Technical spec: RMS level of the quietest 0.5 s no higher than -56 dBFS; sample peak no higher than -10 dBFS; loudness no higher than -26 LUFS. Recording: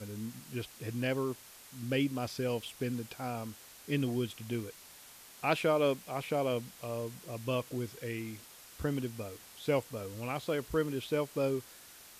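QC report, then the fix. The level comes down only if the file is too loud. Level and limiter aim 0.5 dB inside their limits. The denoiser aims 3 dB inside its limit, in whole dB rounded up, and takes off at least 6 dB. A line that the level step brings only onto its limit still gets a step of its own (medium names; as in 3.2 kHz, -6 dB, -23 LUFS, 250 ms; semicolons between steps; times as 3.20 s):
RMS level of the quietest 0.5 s -54 dBFS: fail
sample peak -16.0 dBFS: pass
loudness -35.5 LUFS: pass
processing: noise reduction 6 dB, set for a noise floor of -54 dBFS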